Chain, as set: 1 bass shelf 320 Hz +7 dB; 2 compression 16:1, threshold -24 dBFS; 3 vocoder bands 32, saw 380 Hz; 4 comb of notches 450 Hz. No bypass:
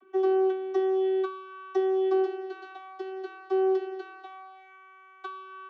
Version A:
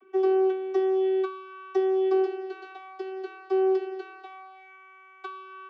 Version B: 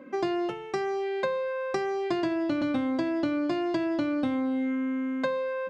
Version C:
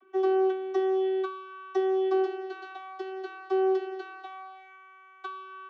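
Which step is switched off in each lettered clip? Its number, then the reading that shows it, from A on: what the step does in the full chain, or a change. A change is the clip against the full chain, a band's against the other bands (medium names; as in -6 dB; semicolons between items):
4, loudness change +1.5 LU; 3, 500 Hz band -8.5 dB; 1, 2 kHz band +2.5 dB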